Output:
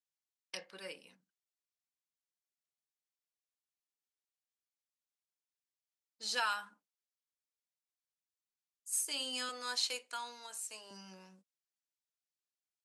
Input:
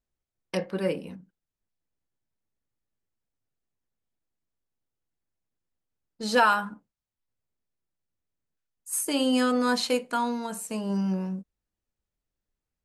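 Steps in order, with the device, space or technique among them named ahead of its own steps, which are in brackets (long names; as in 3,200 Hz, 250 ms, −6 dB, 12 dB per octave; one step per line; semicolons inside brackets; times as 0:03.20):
0:09.49–0:10.91: high-pass filter 280 Hz 24 dB per octave
piezo pickup straight into a mixer (low-pass filter 6,300 Hz 12 dB per octave; first difference)
level +1.5 dB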